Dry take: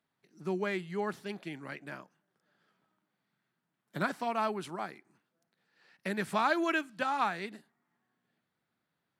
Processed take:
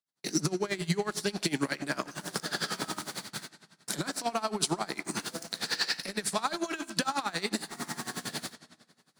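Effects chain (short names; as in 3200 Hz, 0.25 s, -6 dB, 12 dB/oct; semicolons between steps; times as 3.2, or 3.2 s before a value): recorder AGC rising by 78 dB/s; gate with hold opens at -41 dBFS; HPF 130 Hz; band shelf 6500 Hz +13 dB; compressor 6:1, threshold -41 dBFS, peak gain reduction 20.5 dB; sample leveller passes 2; on a send at -11 dB: reverb RT60 1.7 s, pre-delay 4 ms; on the sum: dB-linear tremolo 11 Hz, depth 19 dB; gain +9 dB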